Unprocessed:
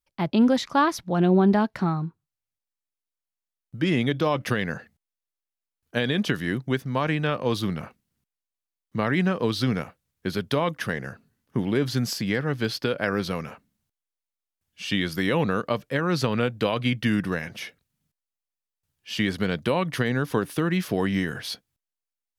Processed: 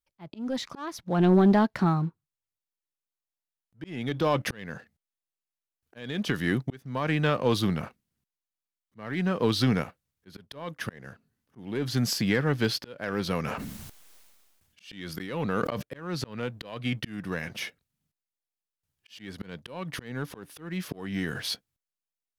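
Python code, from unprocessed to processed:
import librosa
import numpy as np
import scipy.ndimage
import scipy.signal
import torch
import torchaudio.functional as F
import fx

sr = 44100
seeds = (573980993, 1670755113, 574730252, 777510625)

y = fx.leveller(x, sr, passes=1)
y = fx.auto_swell(y, sr, attack_ms=533.0)
y = fx.sustainer(y, sr, db_per_s=32.0, at=(13.43, 15.81), fade=0.02)
y = F.gain(torch.from_numpy(y), -2.5).numpy()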